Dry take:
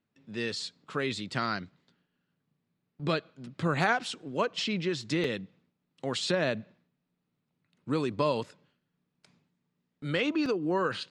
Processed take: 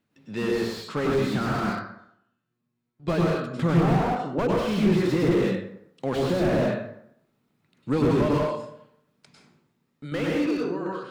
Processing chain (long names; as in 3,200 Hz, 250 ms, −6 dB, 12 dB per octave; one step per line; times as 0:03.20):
fade-out on the ending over 1.66 s
0:01.60–0:03.08: tuned comb filter 120 Hz, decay 0.6 s, harmonics all, mix 90%
0:03.83–0:04.39: Savitzky-Golay smoothing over 65 samples
0:08.28–0:10.12: downward compressor, threshold −40 dBFS, peak gain reduction 15 dB
dense smooth reverb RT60 0.71 s, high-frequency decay 0.6×, pre-delay 90 ms, DRR −3.5 dB
slew-rate limiting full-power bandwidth 26 Hz
level +5.5 dB